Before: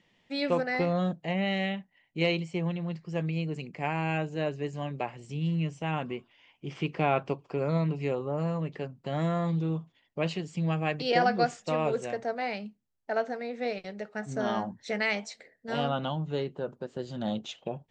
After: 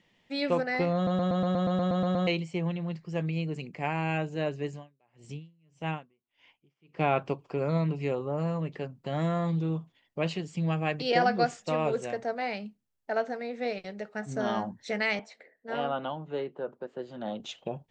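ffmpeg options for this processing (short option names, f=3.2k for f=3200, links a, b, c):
-filter_complex "[0:a]asplit=3[a][b][c];[a]afade=t=out:st=4.66:d=0.02[d];[b]aeval=exprs='val(0)*pow(10,-39*(0.5-0.5*cos(2*PI*1.7*n/s))/20)':c=same,afade=t=in:st=4.66:d=0.02,afade=t=out:st=6.99:d=0.02[e];[c]afade=t=in:st=6.99:d=0.02[f];[d][e][f]amix=inputs=3:normalize=0,asettb=1/sr,asplit=3[g][h][i];[g]atrim=end=15.194[j];[h]atrim=start=15.19:end=17.4,asetpts=PTS-STARTPTS,afade=t=in:d=0.004:c=qsin,afade=t=out:st=2.206:d=0.004:c=qsin,acrossover=split=260 2800:gain=0.224 1 0.2[k][l][m];[k][l][m]amix=inputs=3:normalize=0[n];[i]atrim=start=17.396[o];[j][n]acrossfade=d=0.004:c1=hsin:c2=qsin[p];[p][o]acrossfade=d=0.004:c1=qsin:c2=hsin,asplit=12[q][r][s][t][u][v][w][x][y][z][aa][ab];[q]atrim=end=1.072[ac];[r]atrim=start=0.948:end=1.072[ad];[s]atrim=start=0.948:end=1.072[ae];[t]atrim=start=0.948:end=1.072[af];[u]atrim=start=0.948:end=1.072[ag];[v]atrim=start=0.948:end=1.072[ah];[w]atrim=start=0.948:end=1.072[ai];[x]atrim=start=0.948:end=1.072[aj];[y]atrim=start=0.948:end=1.072[ak];[z]atrim=start=0.948:end=1.072[al];[aa]atrim=start=0.948:end=1.072[am];[ab]atrim=start=2.268[an];[ac][ad]acrossfade=d=0.004:c1=hsin:c2=hsin[ao];[ao][ae]acrossfade=d=0.004:c1=hsin:c2=hsin[ap];[ap][af]acrossfade=d=0.004:c1=hsin:c2=hsin[aq];[aq][ag]acrossfade=d=0.004:c1=hsin:c2=hsin[ar];[ar][ah]acrossfade=d=0.004:c1=hsin:c2=hsin[as];[as][ai]acrossfade=d=0.004:c1=hsin:c2=hsin[at];[at][aj]acrossfade=d=0.004:c1=hsin:c2=hsin[au];[au][ak]acrossfade=d=0.004:c1=hsin:c2=hsin[av];[av][al]acrossfade=d=0.004:c1=hsin:c2=hsin[aw];[aw][am]acrossfade=d=0.004:c1=hsin:c2=hsin[ax];[ax][an]acrossfade=d=0.004:c1=hsin:c2=hsin"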